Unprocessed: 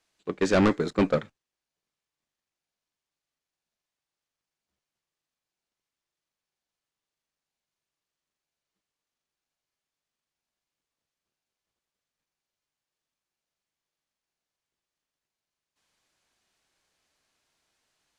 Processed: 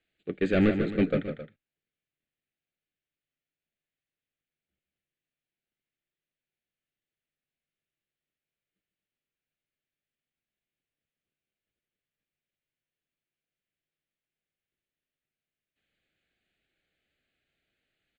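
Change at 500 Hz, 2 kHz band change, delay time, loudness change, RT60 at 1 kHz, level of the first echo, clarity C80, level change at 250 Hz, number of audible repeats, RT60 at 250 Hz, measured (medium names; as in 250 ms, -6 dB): -2.5 dB, -2.5 dB, 152 ms, -1.5 dB, no reverb, -8.5 dB, no reverb, -0.5 dB, 2, no reverb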